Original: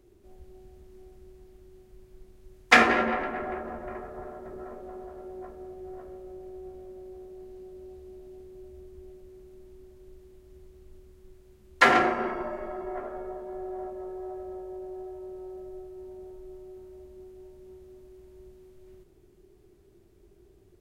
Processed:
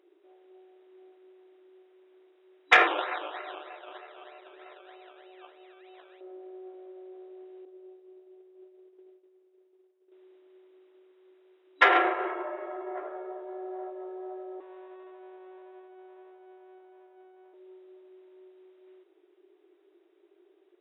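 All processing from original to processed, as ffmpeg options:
-filter_complex "[0:a]asettb=1/sr,asplit=3[a][b][c];[a]atrim=end=2.874[d];[b]atrim=start=2.87:end=6.21,asetpts=PTS-STARTPTS,afade=t=in:d=0.004:c=qsin,afade=t=out:st=3.336:d=0.004:c=qsin,equalizer=f=320:w=0.62:g=-10,acrusher=samples=18:mix=1:aa=0.000001:lfo=1:lforange=10.8:lforate=3.2[e];[c]atrim=start=6.206[f];[d][e]acrossfade=d=0.004:c1=hsin:c2=qsin[g];[g][f]acrossfade=d=0.004:c1=qsin:c2=hsin,asettb=1/sr,asplit=3[h][i][j];[h]atrim=end=7.654[k];[i]atrim=start=7.65:end=10.12,asetpts=PTS-STARTPTS,afade=t=in:d=0.004:c=qsin,afade=t=out:st=2.466:d=0.004:c=qsin,agate=range=-33dB:threshold=-40dB:ratio=3:release=100:detection=peak,lowpass=8.7k,equalizer=f=410:t=o:w=1.1:g=4.5[l];[j]atrim=start=10.116[m];[k][l]acrossfade=d=0.004:c1=hsin:c2=qsin[n];[n][m]acrossfade=d=0.004:c1=qsin:c2=hsin,asettb=1/sr,asplit=3[o][p][q];[o]atrim=end=14.604[r];[p]atrim=start=14.6:end=17.54,asetpts=PTS-STARTPTS,afade=t=in:d=0.004:c=qsin,afade=t=out:st=2.936:d=0.004:c=qsin,asuperpass=centerf=470:order=20:qfactor=0.65,aeval=exprs='max(val(0),0)':c=same[s];[q]atrim=start=17.536[t];[r][s]acrossfade=d=0.004:c1=hsin:c2=qsin[u];[u][t]acrossfade=d=0.004:c1=qsin:c2=hsin,afftfilt=real='re*between(b*sr/4096,300,3900)':imag='im*between(b*sr/4096,300,3900)':win_size=4096:overlap=0.75,lowshelf=f=450:g=-4,acontrast=31,volume=-5dB"

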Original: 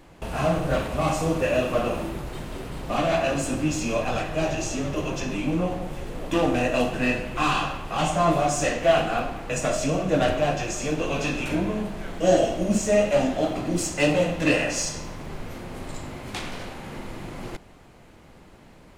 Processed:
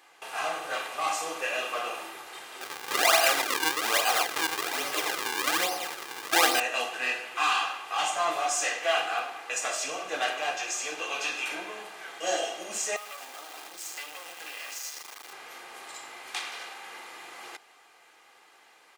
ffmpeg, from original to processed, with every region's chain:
-filter_complex "[0:a]asettb=1/sr,asplit=3[a][b][c];[a]atrim=end=2.614[d];[b]atrim=start=2.61:end=6.6,asetpts=PTS-STARTPTS,afade=t=in:d=0.004:c=qsin,afade=t=out:st=3.986:d=0.004:c=qsin,acrusher=samples=39:mix=1:aa=0.000001:lfo=1:lforange=62.4:lforate=1.2,acontrast=67[e];[c]atrim=start=6.596[f];[d][e]acrossfade=d=0.004:c1=hsin:c2=qsin[g];[g][f]acrossfade=d=0.004:c1=qsin:c2=hsin,asettb=1/sr,asplit=3[h][i][j];[h]atrim=end=12.964[k];[i]atrim=start=12.96:end=15.33,asetpts=PTS-STARTPTS,afade=t=in:d=0.004:c=qsin,afade=t=out:st=2.366:d=0.004:c=qsin,acompressor=threshold=-28dB:ratio=16:attack=3.2:release=140:knee=1:detection=peak,acrusher=bits=4:dc=4:mix=0:aa=0.000001[l];[j]atrim=start=15.326[m];[k][l]acrossfade=d=0.004:c1=hsin:c2=qsin[n];[n][m]acrossfade=d=0.004:c1=qsin:c2=hsin,highpass=990,aecho=1:1:2.5:0.44"

